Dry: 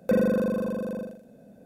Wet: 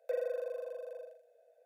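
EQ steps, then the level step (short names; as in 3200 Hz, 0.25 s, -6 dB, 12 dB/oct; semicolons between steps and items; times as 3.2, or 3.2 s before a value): rippled Chebyshev high-pass 460 Hz, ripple 9 dB; bell 1300 Hz -12.5 dB 1.5 oct; high shelf 2400 Hz -8 dB; 0.0 dB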